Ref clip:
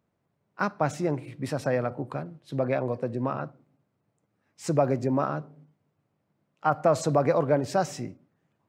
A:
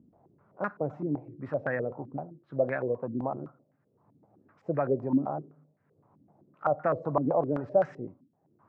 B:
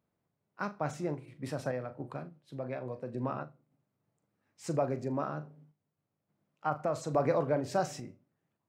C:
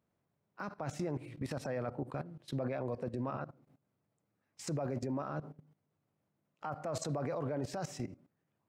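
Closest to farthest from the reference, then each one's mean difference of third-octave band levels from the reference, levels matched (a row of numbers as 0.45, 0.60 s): B, C, A; 2.0, 3.5, 6.5 dB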